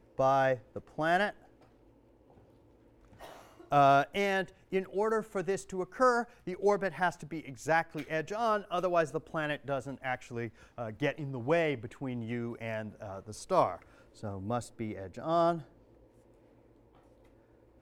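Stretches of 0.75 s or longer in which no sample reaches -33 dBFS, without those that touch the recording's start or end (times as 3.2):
1.3–3.72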